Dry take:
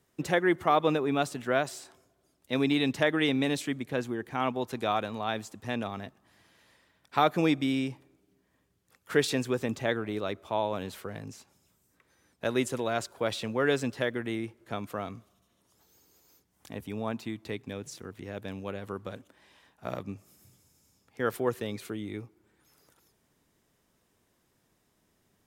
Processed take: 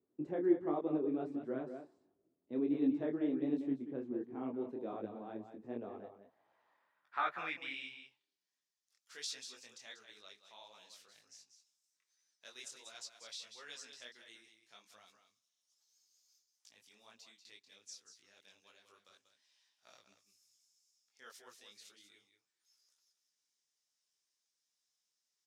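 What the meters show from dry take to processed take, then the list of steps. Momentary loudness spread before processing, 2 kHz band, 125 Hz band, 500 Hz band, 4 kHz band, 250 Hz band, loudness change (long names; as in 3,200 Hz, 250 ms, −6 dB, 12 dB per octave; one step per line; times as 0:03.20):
15 LU, −15.5 dB, −19.5 dB, −12.5 dB, −13.0 dB, −8.0 dB, −8.5 dB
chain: band-pass filter sweep 320 Hz → 5,500 Hz, 0:05.57–0:08.52
single-tap delay 189 ms −9 dB
micro pitch shift up and down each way 48 cents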